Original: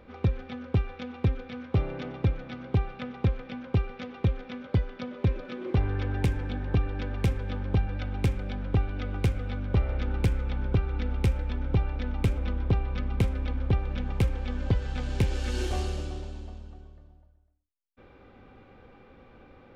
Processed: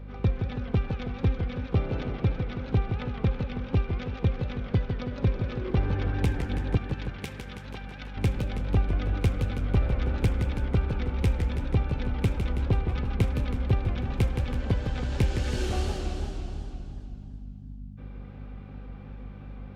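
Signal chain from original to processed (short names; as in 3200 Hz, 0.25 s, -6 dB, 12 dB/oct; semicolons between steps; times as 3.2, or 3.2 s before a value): 6.77–8.17 HPF 1400 Hz 6 dB/oct; hum 50 Hz, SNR 12 dB; warbling echo 0.163 s, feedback 64%, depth 204 cents, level -6.5 dB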